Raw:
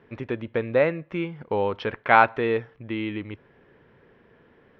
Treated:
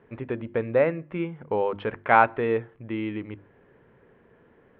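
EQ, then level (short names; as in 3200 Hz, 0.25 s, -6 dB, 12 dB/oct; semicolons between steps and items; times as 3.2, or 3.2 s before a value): LPF 3600 Hz 24 dB/oct; high shelf 2600 Hz -9.5 dB; notches 50/100/150/200/250/300/350 Hz; 0.0 dB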